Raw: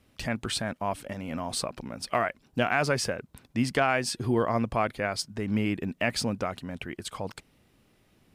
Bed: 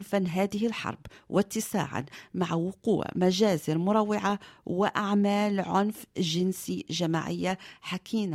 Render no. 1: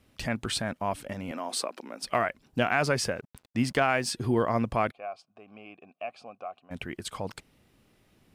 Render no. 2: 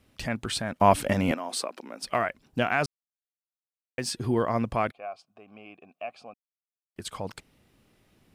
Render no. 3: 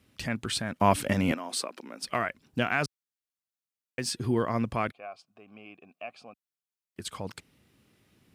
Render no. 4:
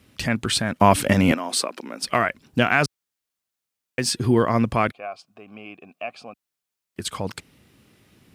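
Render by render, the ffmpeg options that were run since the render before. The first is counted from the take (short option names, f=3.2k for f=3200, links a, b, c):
-filter_complex "[0:a]asettb=1/sr,asplit=3[a][b][c];[a]atrim=end=1.314[d];[b]atrim=start=1.31:end=2.03,asetpts=PTS-STARTPTS,afade=t=in:d=0.004:c=qsin,afade=t=out:st=0.716:d=0.004:c=qsin,highpass=f=270:w=0.5412,highpass=f=270:w=1.3066[e];[c]atrim=start=2.026[f];[d][e]acrossfade=d=0.004:c1=hsin:c2=qsin[g];[g][f]acrossfade=d=0.004:c1=qsin:c2=hsin,asettb=1/sr,asplit=3[h][i][j];[h]atrim=end=3.164[k];[i]atrim=start=3.16:end=4.11,asetpts=PTS-STARTPTS,afade=t=in:d=0.004:c=qsin,afade=t=out:st=0.946:d=0.004:c=qsin,aeval=exprs='sgn(val(0))*max(abs(val(0))-0.00168,0)':c=same[l];[j]atrim=start=4.106[m];[k][l]acrossfade=d=0.004:c1=hsin:c2=qsin[n];[n][m]acrossfade=d=0.004:c1=qsin:c2=hsin,asplit=3[o][p][q];[o]afade=t=out:st=4.9:d=0.02[r];[p]asplit=3[s][t][u];[s]bandpass=f=730:t=q:w=8,volume=0dB[v];[t]bandpass=f=1.09k:t=q:w=8,volume=-6dB[w];[u]bandpass=f=2.44k:t=q:w=8,volume=-9dB[x];[v][w][x]amix=inputs=3:normalize=0,afade=t=in:st=4.9:d=0.02,afade=t=out:st=6.7:d=0.02[y];[q]afade=t=in:st=6.7:d=0.02[z];[r][y][z]amix=inputs=3:normalize=0"
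-filter_complex "[0:a]asplit=7[a][b][c][d][e][f][g];[a]atrim=end=0.802[h];[b]atrim=start=0.798:end=1.342,asetpts=PTS-STARTPTS,volume=11.5dB[i];[c]atrim=start=1.338:end=2.86,asetpts=PTS-STARTPTS,afade=t=out:st=1.518:d=0.004:c=hsin[j];[d]atrim=start=2.86:end=3.98,asetpts=PTS-STARTPTS,volume=0[k];[e]atrim=start=3.98:end=6.34,asetpts=PTS-STARTPTS,afade=t=in:d=0.004:c=hsin,afade=t=out:st=2.356:d=0.004:c=hsin[l];[f]atrim=start=6.34:end=6.96,asetpts=PTS-STARTPTS,volume=0[m];[g]atrim=start=6.96,asetpts=PTS-STARTPTS,afade=t=in:d=0.004:c=hsin[n];[h][i]acrossfade=d=0.004:c1=hsin:c2=hsin[o];[j][k][l][m][n]concat=n=5:v=0:a=1[p];[o][p]acrossfade=d=0.004:c1=hsin:c2=hsin"
-af "highpass=65,equalizer=f=700:w=1.2:g=-5"
-af "volume=8.5dB,alimiter=limit=-2dB:level=0:latency=1"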